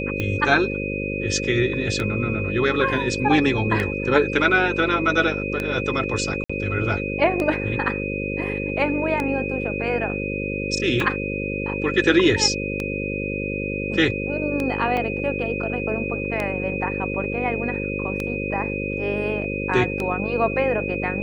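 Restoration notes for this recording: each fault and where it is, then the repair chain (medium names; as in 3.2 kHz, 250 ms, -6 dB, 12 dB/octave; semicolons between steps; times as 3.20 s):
buzz 50 Hz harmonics 11 -28 dBFS
tick 33 1/3 rpm -12 dBFS
whine 2.5 kHz -29 dBFS
6.44–6.50 s: dropout 55 ms
14.97 s: dropout 3.6 ms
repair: de-click; band-stop 2.5 kHz, Q 30; de-hum 50 Hz, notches 11; interpolate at 6.44 s, 55 ms; interpolate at 14.97 s, 3.6 ms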